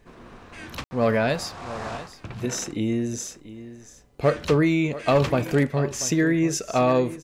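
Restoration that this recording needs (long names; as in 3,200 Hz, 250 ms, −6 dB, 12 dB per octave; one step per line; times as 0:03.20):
clipped peaks rebuilt −11.5 dBFS
ambience match 0:00.84–0:00.91
echo removal 686 ms −15.5 dB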